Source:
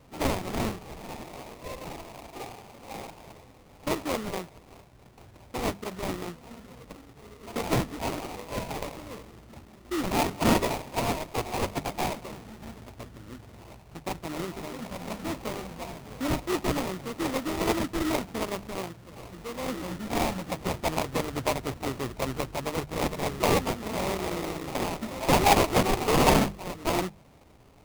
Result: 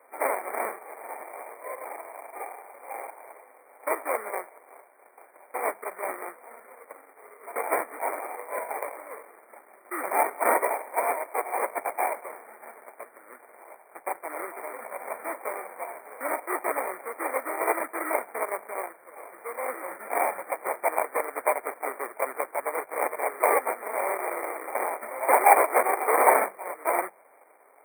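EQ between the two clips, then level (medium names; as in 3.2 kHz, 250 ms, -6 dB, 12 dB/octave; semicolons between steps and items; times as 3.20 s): high-pass 490 Hz 24 dB/octave; brick-wall FIR band-stop 2.4–8.2 kHz; +4.5 dB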